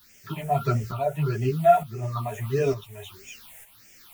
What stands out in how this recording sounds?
a quantiser's noise floor 8-bit, dither triangular; phasing stages 6, 1.6 Hz, lowest notch 300–1100 Hz; tremolo saw up 1.1 Hz, depth 65%; a shimmering, thickened sound

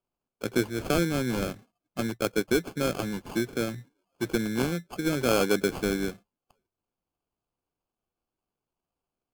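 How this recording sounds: aliases and images of a low sample rate 1.9 kHz, jitter 0%; MP3

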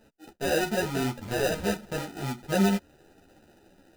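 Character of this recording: aliases and images of a low sample rate 1.1 kHz, jitter 0%; a shimmering, thickened sound

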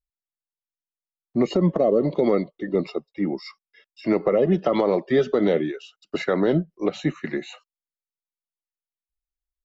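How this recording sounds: noise floor -95 dBFS; spectral tilt -5.5 dB/octave

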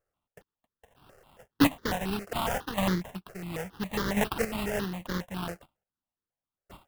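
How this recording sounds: a buzz of ramps at a fixed pitch in blocks of 16 samples; chopped level 0.72 Hz, depth 65%, duty 20%; aliases and images of a low sample rate 2.3 kHz, jitter 20%; notches that jump at a steady rate 7.3 Hz 960–2600 Hz

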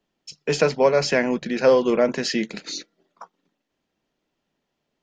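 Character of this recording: noise floor -79 dBFS; spectral tilt -4.5 dB/octave

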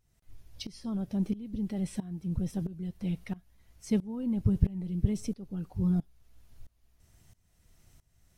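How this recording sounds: tremolo saw up 1.5 Hz, depth 90%

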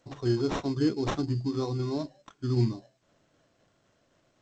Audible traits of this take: aliases and images of a low sample rate 4.7 kHz, jitter 0%; tremolo saw down 3.9 Hz, depth 35%; G.722

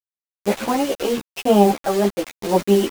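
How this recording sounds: chopped level 0.85 Hz, depth 60%, duty 45%; a quantiser's noise floor 6-bit, dither none; a shimmering, thickened sound

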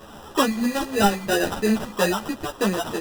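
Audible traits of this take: a quantiser's noise floor 8-bit, dither triangular; phasing stages 4, 3.1 Hz, lowest notch 350–4900 Hz; aliases and images of a low sample rate 2.2 kHz, jitter 0%; a shimmering, thickened sound

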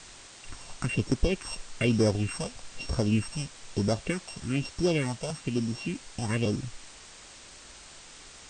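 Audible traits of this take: a buzz of ramps at a fixed pitch in blocks of 16 samples; phasing stages 4, 1.1 Hz, lowest notch 300–2700 Hz; a quantiser's noise floor 8-bit, dither triangular; MP2

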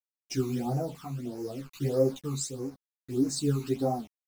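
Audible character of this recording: a quantiser's noise floor 8-bit, dither none; phasing stages 12, 1.6 Hz, lowest notch 530–3400 Hz; tremolo triangle 0.64 Hz, depth 60%; a shimmering, thickened sound

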